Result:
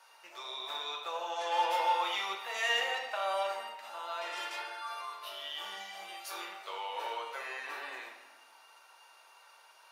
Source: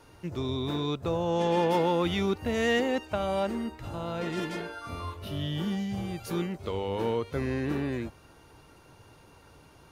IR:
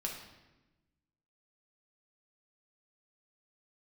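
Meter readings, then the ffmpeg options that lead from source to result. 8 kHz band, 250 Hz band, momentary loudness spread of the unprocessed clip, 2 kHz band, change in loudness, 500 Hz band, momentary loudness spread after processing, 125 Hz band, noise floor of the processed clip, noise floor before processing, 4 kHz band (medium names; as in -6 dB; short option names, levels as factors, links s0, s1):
-0.5 dB, -29.5 dB, 11 LU, +0.5 dB, -5.5 dB, -11.5 dB, 13 LU, under -40 dB, -60 dBFS, -56 dBFS, +1.0 dB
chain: -filter_complex "[0:a]highpass=f=750:w=0.5412,highpass=f=750:w=1.3066[s0];[1:a]atrim=start_sample=2205[s1];[s0][s1]afir=irnorm=-1:irlink=0"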